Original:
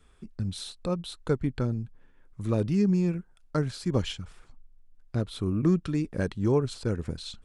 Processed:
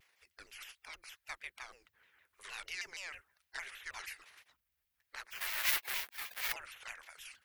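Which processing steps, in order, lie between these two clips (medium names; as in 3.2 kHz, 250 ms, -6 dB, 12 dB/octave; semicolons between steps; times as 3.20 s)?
5.32–6.52 s: square wave that keeps the level; pre-emphasis filter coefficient 0.9; spectral gate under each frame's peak -20 dB weak; graphic EQ 125/250/2000/8000 Hz -6/-11/+10/-10 dB; vibrato with a chosen wave saw down 6.4 Hz, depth 250 cents; trim +10 dB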